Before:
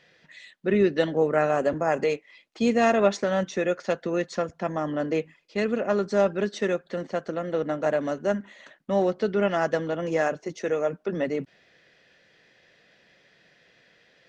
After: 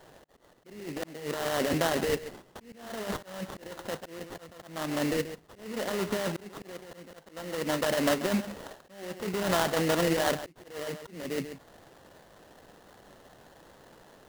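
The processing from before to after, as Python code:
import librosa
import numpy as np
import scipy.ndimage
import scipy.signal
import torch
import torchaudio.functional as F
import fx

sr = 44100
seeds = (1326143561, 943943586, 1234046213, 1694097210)

p1 = fx.over_compress(x, sr, threshold_db=-27.0, ratio=-1.0)
p2 = p1 + fx.echo_single(p1, sr, ms=136, db=-13.0, dry=0)
p3 = fx.auto_swell(p2, sr, attack_ms=603.0)
p4 = fx.peak_eq(p3, sr, hz=1500.0, db=5.0, octaves=0.72)
y = fx.sample_hold(p4, sr, seeds[0], rate_hz=2400.0, jitter_pct=20)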